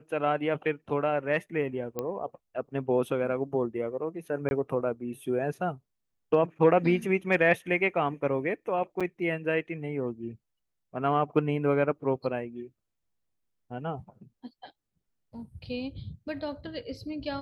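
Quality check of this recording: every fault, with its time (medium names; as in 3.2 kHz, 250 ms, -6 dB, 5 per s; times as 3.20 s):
1.99 s: pop -18 dBFS
4.49–4.51 s: dropout 21 ms
9.00–9.01 s: dropout 5.8 ms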